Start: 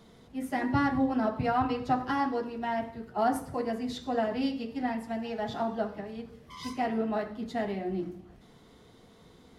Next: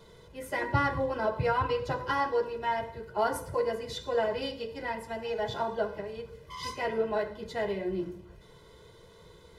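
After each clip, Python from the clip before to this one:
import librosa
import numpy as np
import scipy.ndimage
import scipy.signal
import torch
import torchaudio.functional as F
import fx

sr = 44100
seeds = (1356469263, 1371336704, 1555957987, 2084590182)

y = x + 0.88 * np.pad(x, (int(2.0 * sr / 1000.0), 0))[:len(x)]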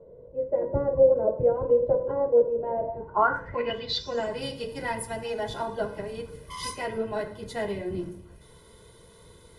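y = fx.octave_divider(x, sr, octaves=1, level_db=-3.0)
y = fx.rider(y, sr, range_db=5, speed_s=0.5)
y = fx.filter_sweep_lowpass(y, sr, from_hz=540.0, to_hz=10000.0, start_s=2.79, end_s=4.4, q=7.8)
y = y * librosa.db_to_amplitude(-1.0)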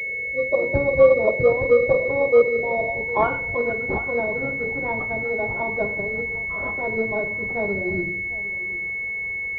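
y = x + 10.0 ** (-17.5 / 20.0) * np.pad(x, (int(754 * sr / 1000.0), 0))[:len(x)]
y = fx.pwm(y, sr, carrier_hz=2200.0)
y = y * librosa.db_to_amplitude(5.0)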